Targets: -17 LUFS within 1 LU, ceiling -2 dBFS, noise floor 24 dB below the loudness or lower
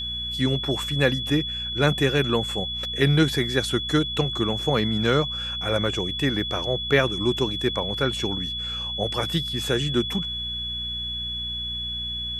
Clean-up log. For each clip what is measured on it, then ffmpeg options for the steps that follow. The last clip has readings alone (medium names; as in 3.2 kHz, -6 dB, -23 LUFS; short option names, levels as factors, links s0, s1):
hum 60 Hz; highest harmonic 240 Hz; hum level -36 dBFS; steady tone 3.4 kHz; tone level -28 dBFS; loudness -24.0 LUFS; peak level -5.5 dBFS; loudness target -17.0 LUFS
-> -af "bandreject=f=60:t=h:w=4,bandreject=f=120:t=h:w=4,bandreject=f=180:t=h:w=4,bandreject=f=240:t=h:w=4"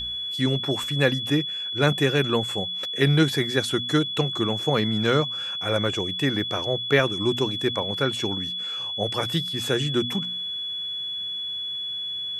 hum not found; steady tone 3.4 kHz; tone level -28 dBFS
-> -af "bandreject=f=3400:w=30"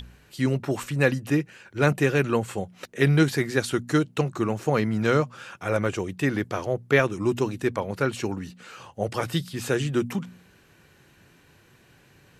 steady tone not found; loudness -25.5 LUFS; peak level -5.5 dBFS; loudness target -17.0 LUFS
-> -af "volume=2.66,alimiter=limit=0.794:level=0:latency=1"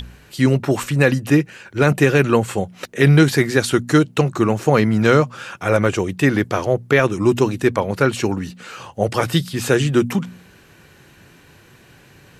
loudness -17.5 LUFS; peak level -2.0 dBFS; noise floor -49 dBFS